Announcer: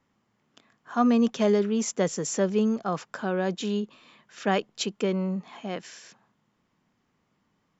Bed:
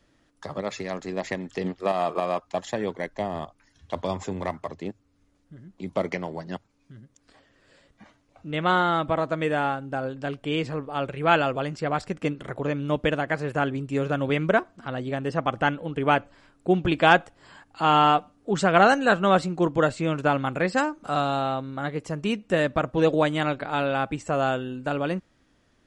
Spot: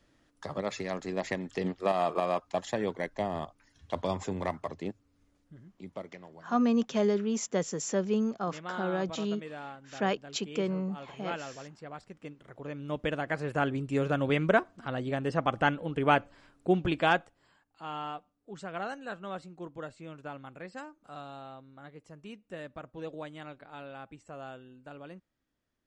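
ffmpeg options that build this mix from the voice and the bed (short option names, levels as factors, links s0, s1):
-filter_complex "[0:a]adelay=5550,volume=0.596[s0];[1:a]volume=3.76,afade=t=out:st=5.3:d=0.76:silence=0.188365,afade=t=in:st=12.47:d=1.3:silence=0.188365,afade=t=out:st=16.54:d=1.05:silence=0.149624[s1];[s0][s1]amix=inputs=2:normalize=0"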